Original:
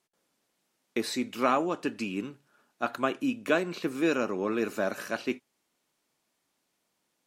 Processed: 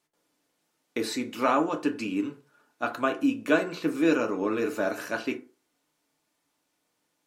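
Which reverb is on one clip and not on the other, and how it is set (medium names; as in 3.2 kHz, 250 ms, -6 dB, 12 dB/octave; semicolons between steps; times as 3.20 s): FDN reverb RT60 0.38 s, low-frequency decay 0.85×, high-frequency decay 0.45×, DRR 3.5 dB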